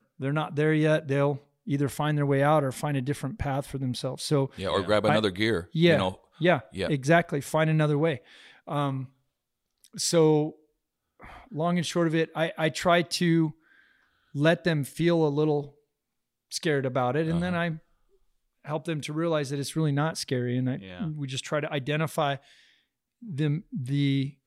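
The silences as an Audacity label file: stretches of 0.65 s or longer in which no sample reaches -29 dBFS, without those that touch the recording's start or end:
9.020000	9.990000	silence
10.490000	11.560000	silence
13.490000	14.350000	silence
15.610000	16.530000	silence
17.730000	18.690000	silence
22.350000	23.380000	silence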